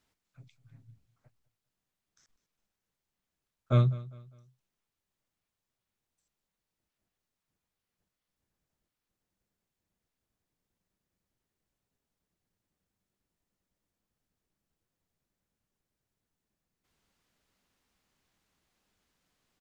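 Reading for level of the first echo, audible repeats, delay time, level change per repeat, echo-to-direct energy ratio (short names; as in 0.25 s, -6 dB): -19.0 dB, 2, 0.202 s, -9.0 dB, -18.5 dB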